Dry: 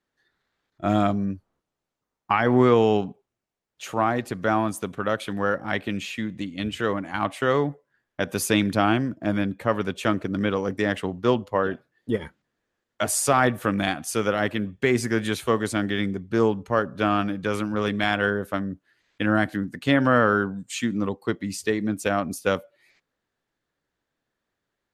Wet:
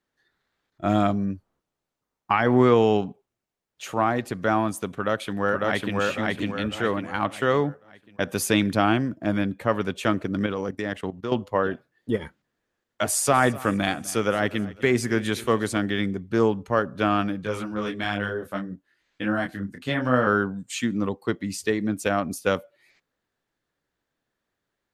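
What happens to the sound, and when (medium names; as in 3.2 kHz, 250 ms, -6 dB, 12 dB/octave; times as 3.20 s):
4.93–5.96 s: echo throw 550 ms, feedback 40%, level -1 dB
10.46–11.32 s: level held to a coarse grid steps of 14 dB
13.02–15.79 s: feedback delay 253 ms, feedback 42%, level -19.5 dB
17.43–20.27 s: detune thickener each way 23 cents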